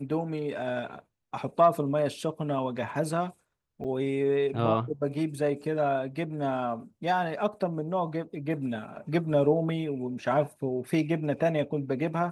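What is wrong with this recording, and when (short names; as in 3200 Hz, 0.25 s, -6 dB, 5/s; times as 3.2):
3.84–3.85 gap 7.5 ms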